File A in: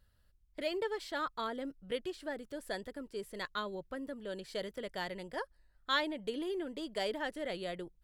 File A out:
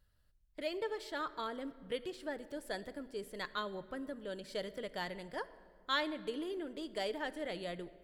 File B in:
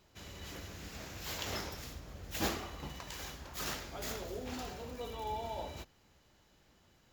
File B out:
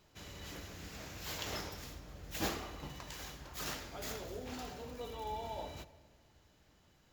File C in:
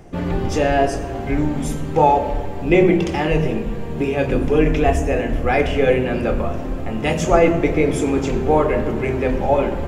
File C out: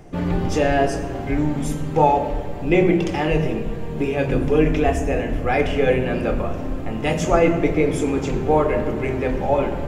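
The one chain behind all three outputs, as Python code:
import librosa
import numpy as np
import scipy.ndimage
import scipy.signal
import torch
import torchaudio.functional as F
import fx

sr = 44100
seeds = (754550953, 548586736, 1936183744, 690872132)

p1 = fx.rider(x, sr, range_db=4, speed_s=2.0)
p2 = x + F.gain(torch.from_numpy(p1), -2.0).numpy()
p3 = fx.room_shoebox(p2, sr, seeds[0], volume_m3=2800.0, walls='mixed', distance_m=0.45)
y = F.gain(torch.from_numpy(p3), -7.5).numpy()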